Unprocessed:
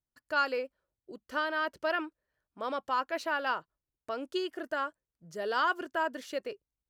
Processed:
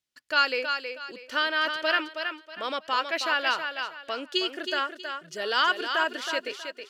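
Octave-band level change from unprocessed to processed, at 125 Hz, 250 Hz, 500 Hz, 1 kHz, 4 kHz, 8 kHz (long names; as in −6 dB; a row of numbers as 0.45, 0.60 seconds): can't be measured, +2.0 dB, +2.5 dB, +4.0 dB, +14.0 dB, +10.0 dB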